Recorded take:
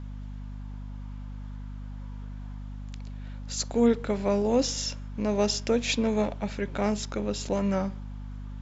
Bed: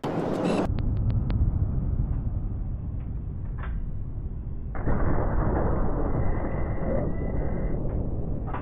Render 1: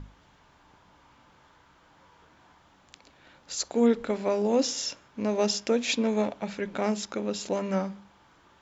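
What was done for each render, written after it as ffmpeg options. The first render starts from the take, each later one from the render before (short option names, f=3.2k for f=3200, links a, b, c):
-af "bandreject=f=50:t=h:w=6,bandreject=f=100:t=h:w=6,bandreject=f=150:t=h:w=6,bandreject=f=200:t=h:w=6,bandreject=f=250:t=h:w=6"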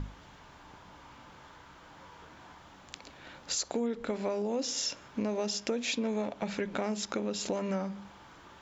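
-filter_complex "[0:a]asplit=2[a][b];[b]alimiter=limit=-21.5dB:level=0:latency=1:release=20,volume=0dB[c];[a][c]amix=inputs=2:normalize=0,acompressor=threshold=-30dB:ratio=6"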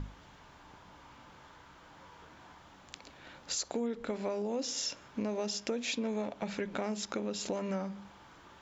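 -af "volume=-2.5dB"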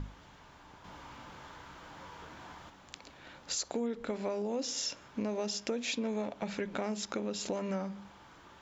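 -filter_complex "[0:a]asettb=1/sr,asplit=3[a][b][c];[a]atrim=end=0.844[d];[b]atrim=start=0.84:end=2.7,asetpts=PTS-STARTPTS,afade=t=in:d=0.004:c=qsin,afade=t=out:st=1.856:d=0.004:c=qsin,acontrast=36[e];[c]atrim=start=2.696[f];[d][e]acrossfade=d=0.004:c1=hsin:c2=qsin[g];[g][f]acrossfade=d=0.004:c1=qsin:c2=hsin"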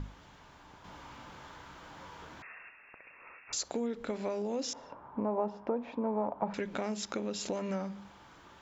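-filter_complex "[0:a]asettb=1/sr,asplit=3[a][b][c];[a]atrim=end=2.424[d];[b]atrim=start=2.42:end=3.53,asetpts=PTS-STARTPTS,afade=t=in:d=0.004:c=qsin,afade=t=out:st=1.106:d=0.004:c=qsin,lowpass=f=2.4k:t=q:w=0.5098,lowpass=f=2.4k:t=q:w=0.6013,lowpass=f=2.4k:t=q:w=0.9,lowpass=f=2.4k:t=q:w=2.563,afreqshift=-2800[e];[c]atrim=start=3.526[f];[d][e]acrossfade=d=0.004:c1=hsin:c2=qsin[g];[g][f]acrossfade=d=0.004:c1=qsin:c2=hsin,asettb=1/sr,asplit=3[h][i][j];[h]atrim=end=4.734[k];[i]atrim=start=4.73:end=6.54,asetpts=PTS-STARTPTS,afade=t=in:d=0.004:c=qsin,afade=t=out:st=1.806:d=0.004:c=qsin,lowpass=f=950:t=q:w=3.4[l];[j]atrim=start=6.536[m];[k][l]acrossfade=d=0.004:c1=hsin:c2=qsin[n];[n][m]acrossfade=d=0.004:c1=qsin:c2=hsin"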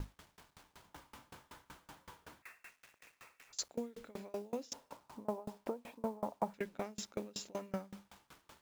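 -af "acrusher=bits=8:mix=0:aa=0.000001,aeval=exprs='val(0)*pow(10,-29*if(lt(mod(5.3*n/s,1),2*abs(5.3)/1000),1-mod(5.3*n/s,1)/(2*abs(5.3)/1000),(mod(5.3*n/s,1)-2*abs(5.3)/1000)/(1-2*abs(5.3)/1000))/20)':c=same"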